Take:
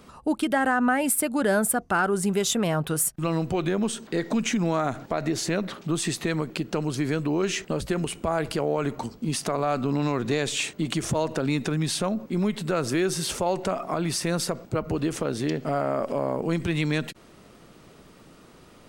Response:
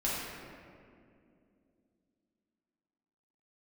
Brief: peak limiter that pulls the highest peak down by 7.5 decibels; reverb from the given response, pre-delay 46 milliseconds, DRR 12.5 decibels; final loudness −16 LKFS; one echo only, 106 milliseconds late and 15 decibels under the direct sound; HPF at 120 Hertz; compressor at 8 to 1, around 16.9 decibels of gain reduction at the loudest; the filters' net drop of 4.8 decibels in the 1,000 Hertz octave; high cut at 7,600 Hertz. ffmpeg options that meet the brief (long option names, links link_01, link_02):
-filter_complex "[0:a]highpass=120,lowpass=7600,equalizer=frequency=1000:width_type=o:gain=-7,acompressor=threshold=-39dB:ratio=8,alimiter=level_in=9.5dB:limit=-24dB:level=0:latency=1,volume=-9.5dB,aecho=1:1:106:0.178,asplit=2[link_01][link_02];[1:a]atrim=start_sample=2205,adelay=46[link_03];[link_02][link_03]afir=irnorm=-1:irlink=0,volume=-20dB[link_04];[link_01][link_04]amix=inputs=2:normalize=0,volume=27.5dB"